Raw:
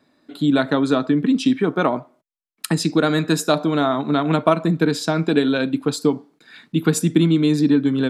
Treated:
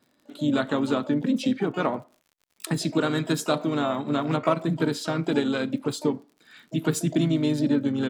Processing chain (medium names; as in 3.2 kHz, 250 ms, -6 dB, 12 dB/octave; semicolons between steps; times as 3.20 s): crackle 43 per s -38 dBFS; harmony voices -3 st -9 dB, +12 st -16 dB; trim -7 dB